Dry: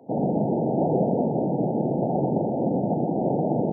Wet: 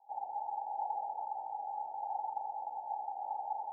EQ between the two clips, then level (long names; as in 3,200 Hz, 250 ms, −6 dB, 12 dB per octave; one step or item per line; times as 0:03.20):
flat-topped band-pass 850 Hz, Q 8
+1.0 dB